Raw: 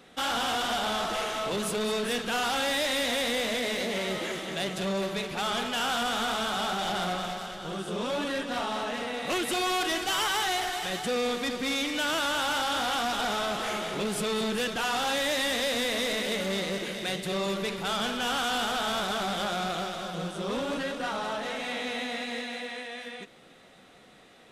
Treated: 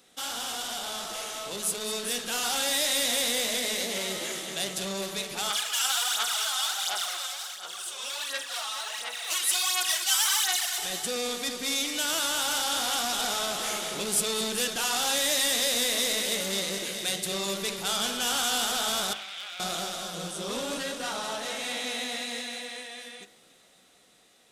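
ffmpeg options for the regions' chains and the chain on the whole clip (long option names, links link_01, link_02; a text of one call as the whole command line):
ffmpeg -i in.wav -filter_complex "[0:a]asettb=1/sr,asplit=3[link_01][link_02][link_03];[link_01]atrim=end=5.504[link_04];[link_02]atrim=start=5.5:end=10.78,asetpts=PTS-STARTPTS,afade=type=in:duration=0.004:curve=qsin,afade=type=out:start_time=5.276:duration=0.004:curve=qsin,highpass=1100,aphaser=in_gain=1:out_gain=1:delay=3.9:decay=0.66:speed=1.4:type=sinusoidal[link_05];[link_03]atrim=start=10.776[link_06];[link_04][link_05]acrossfade=duration=0.004:curve1=hsin:curve2=qsin[link_07];[link_07][link_06]acrossfade=duration=0.004:curve1=qsin:curve2=hsin,asettb=1/sr,asplit=3[link_08][link_09][link_10];[link_08]atrim=end=19.134[link_11];[link_09]atrim=start=19.13:end=19.6,asetpts=PTS-STARTPTS,afade=type=in:duration=0.004:curve=qsin,afade=type=out:start_time=0.466:duration=0.004:curve=qsin,bandpass=frequency=2400:width_type=q:width=2.4,aeval=exprs='clip(val(0),-1,0.0251)':channel_layout=same[link_12];[link_10]atrim=start=19.596[link_13];[link_11][link_12]acrossfade=duration=0.004:curve1=hsin:curve2=qsin[link_14];[link_14][link_13]acrossfade=duration=0.004:curve1=qsin:curve2=hsin,bass=frequency=250:gain=-3,treble=frequency=4000:gain=14,bandreject=frequency=52.87:width_type=h:width=4,bandreject=frequency=105.74:width_type=h:width=4,bandreject=frequency=158.61:width_type=h:width=4,bandreject=frequency=211.48:width_type=h:width=4,bandreject=frequency=264.35:width_type=h:width=4,bandreject=frequency=317.22:width_type=h:width=4,bandreject=frequency=370.09:width_type=h:width=4,bandreject=frequency=422.96:width_type=h:width=4,bandreject=frequency=475.83:width_type=h:width=4,bandreject=frequency=528.7:width_type=h:width=4,bandreject=frequency=581.57:width_type=h:width=4,bandreject=frequency=634.44:width_type=h:width=4,bandreject=frequency=687.31:width_type=h:width=4,bandreject=frequency=740.18:width_type=h:width=4,bandreject=frequency=793.05:width_type=h:width=4,bandreject=frequency=845.92:width_type=h:width=4,bandreject=frequency=898.79:width_type=h:width=4,bandreject=frequency=951.66:width_type=h:width=4,bandreject=frequency=1004.53:width_type=h:width=4,bandreject=frequency=1057.4:width_type=h:width=4,bandreject=frequency=1110.27:width_type=h:width=4,bandreject=frequency=1163.14:width_type=h:width=4,bandreject=frequency=1216.01:width_type=h:width=4,bandreject=frequency=1268.88:width_type=h:width=4,bandreject=frequency=1321.75:width_type=h:width=4,bandreject=frequency=1374.62:width_type=h:width=4,bandreject=frequency=1427.49:width_type=h:width=4,bandreject=frequency=1480.36:width_type=h:width=4,bandreject=frequency=1533.23:width_type=h:width=4,bandreject=frequency=1586.1:width_type=h:width=4,bandreject=frequency=1638.97:width_type=h:width=4,bandreject=frequency=1691.84:width_type=h:width=4,bandreject=frequency=1744.71:width_type=h:width=4,bandreject=frequency=1797.58:width_type=h:width=4,bandreject=frequency=1850.45:width_type=h:width=4,bandreject=frequency=1903.32:width_type=h:width=4,bandreject=frequency=1956.19:width_type=h:width=4,bandreject=frequency=2009.06:width_type=h:width=4,dynaudnorm=framelen=380:gausssize=11:maxgain=7dB,volume=-8.5dB" out.wav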